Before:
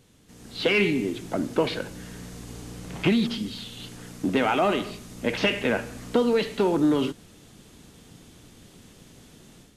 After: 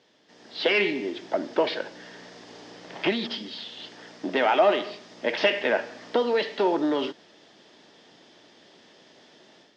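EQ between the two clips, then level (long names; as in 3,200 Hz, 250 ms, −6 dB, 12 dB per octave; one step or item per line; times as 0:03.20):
loudspeaker in its box 310–5,500 Hz, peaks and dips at 360 Hz +4 dB, 620 Hz +9 dB, 890 Hz +6 dB, 1,800 Hz +8 dB, 3,300 Hz +5 dB, 5,100 Hz +7 dB
−3.0 dB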